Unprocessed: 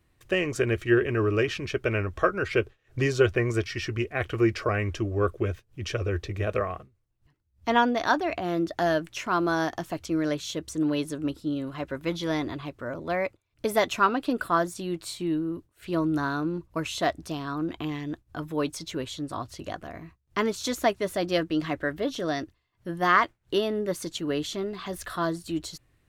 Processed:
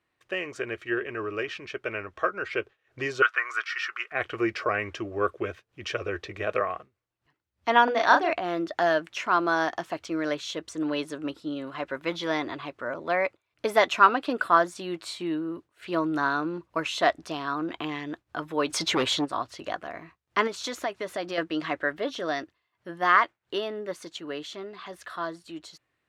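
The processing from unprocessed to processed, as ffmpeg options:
-filter_complex "[0:a]asettb=1/sr,asplit=3[a][b][c];[a]atrim=end=3.224[d];[b]atrim=start=3.22:end=4.12,asetpts=PTS-STARTPTS,afade=t=in:d=0.004:c=qsin,afade=t=out:st=0.896:d=0.004:c=qsin,highpass=f=1.3k:t=q:w=4.9[e];[c]atrim=start=4.116[f];[d][e]acrossfade=d=0.004:c1=hsin:c2=qsin[g];[g][f]acrossfade=d=0.004:c1=qsin:c2=hsin,asettb=1/sr,asplit=3[h][i][j];[h]atrim=end=7.844[k];[i]atrim=start=7.84:end=8.33,asetpts=PTS-STARTPTS,afade=t=in:d=0.004:c=qsin,afade=t=out:st=0.486:d=0.004:c=qsin,asplit=2[l][m];[m]adelay=35,volume=-2.5dB[n];[l][n]amix=inputs=2:normalize=0,atrim=end_sample=21609[o];[j]atrim=start=8.326[p];[k][o]acrossfade=d=0.004:c1=hsin:c2=qsin[q];[q][p]acrossfade=d=0.004:c1=qsin:c2=hsin,asplit=3[r][s][t];[r]afade=t=out:st=18.69:d=0.02[u];[s]aeval=exprs='0.0944*sin(PI/2*2.24*val(0)/0.0944)':c=same,afade=t=in:st=18.69:d=0.02,afade=t=out:st=19.24:d=0.02[v];[t]afade=t=in:st=19.24:d=0.02[w];[u][v][w]amix=inputs=3:normalize=0,asettb=1/sr,asplit=3[x][y][z];[x]atrim=end=20.474[aa];[y]atrim=start=20.47:end=21.38,asetpts=PTS-STARTPTS,afade=t=in:d=0.004:c=qsin,afade=t=out:st=0.906:d=0.004:c=qsin,acompressor=threshold=-28dB:ratio=4:attack=3.2:release=140:knee=1:detection=peak[ab];[z]atrim=start=21.376[ac];[aa][ab]acrossfade=d=0.004:c1=hsin:c2=qsin[ad];[ad][ac]acrossfade=d=0.004:c1=qsin:c2=hsin,dynaudnorm=f=580:g=13:m=11.5dB,highpass=f=1k:p=1,aemphasis=mode=reproduction:type=75fm"

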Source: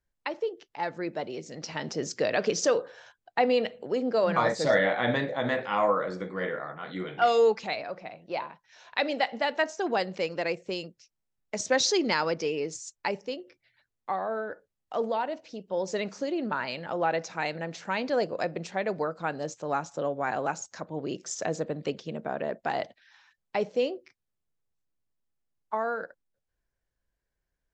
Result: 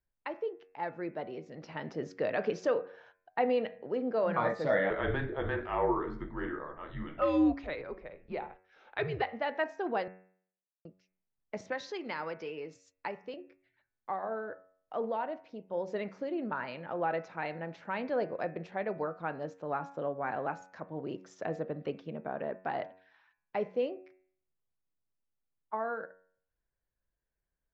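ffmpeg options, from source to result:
-filter_complex "[0:a]asettb=1/sr,asplit=3[a][b][c];[a]atrim=end=4.904[d];[b]atrim=start=4.9:end=9.22,asetpts=PTS-STARTPTS,afade=t=in:d=0.004:c=qsin,afade=t=out:st=4.316:d=0.004:c=qsin,afreqshift=-150[e];[c]atrim=start=9.216[f];[d][e]acrossfade=d=0.004:c1=hsin:c2=qsin[g];[g][f]acrossfade=d=0.004:c1=qsin:c2=hsin,asettb=1/sr,asplit=3[h][i][j];[h]atrim=end=11.574[k];[i]atrim=start=11.57:end=13.34,asetpts=PTS-STARTPTS,afade=t=in:d=0.004:c=qsin,afade=t=out:st=1.766:d=0.004:c=qsin,acrossover=split=740|6700[l][m][n];[l]acompressor=threshold=-36dB:ratio=4[o];[m]acompressor=threshold=-29dB:ratio=4[p];[n]acompressor=threshold=-41dB:ratio=4[q];[o][p][q]amix=inputs=3:normalize=0[r];[j]atrim=start=13.336[s];[k][r]acrossfade=d=0.004:c1=hsin:c2=qsin[t];[t][s]acrossfade=d=0.004:c1=qsin:c2=hsin,asplit=3[u][v][w];[u]atrim=end=10.08,asetpts=PTS-STARTPTS,afade=t=out:st=10.076:d=0.004:c=hsin[x];[v]atrim=start=10.08:end=10.85,asetpts=PTS-STARTPTS,volume=0[y];[w]atrim=start=10.85,asetpts=PTS-STARTPTS,afade=t=in:d=0.004:c=hsin[z];[x][y][z]concat=n=3:v=0:a=1,lowpass=2.2k,bandreject=f=93.13:t=h:w=4,bandreject=f=186.26:t=h:w=4,bandreject=f=279.39:t=h:w=4,bandreject=f=372.52:t=h:w=4,bandreject=f=465.65:t=h:w=4,bandreject=f=558.78:t=h:w=4,bandreject=f=651.91:t=h:w=4,bandreject=f=745.04:t=h:w=4,bandreject=f=838.17:t=h:w=4,bandreject=f=931.3:t=h:w=4,bandreject=f=1.02443k:t=h:w=4,bandreject=f=1.11756k:t=h:w=4,bandreject=f=1.21069k:t=h:w=4,bandreject=f=1.30382k:t=h:w=4,bandreject=f=1.39695k:t=h:w=4,bandreject=f=1.49008k:t=h:w=4,bandreject=f=1.58321k:t=h:w=4,bandreject=f=1.67634k:t=h:w=4,bandreject=f=1.76947k:t=h:w=4,bandreject=f=1.8626k:t=h:w=4,bandreject=f=1.95573k:t=h:w=4,bandreject=f=2.04886k:t=h:w=4,bandreject=f=2.14199k:t=h:w=4,bandreject=f=2.23512k:t=h:w=4,bandreject=f=2.32825k:t=h:w=4,bandreject=f=2.42138k:t=h:w=4,bandreject=f=2.51451k:t=h:w=4,bandreject=f=2.60764k:t=h:w=4,bandreject=f=2.70077k:t=h:w=4,volume=-4.5dB"

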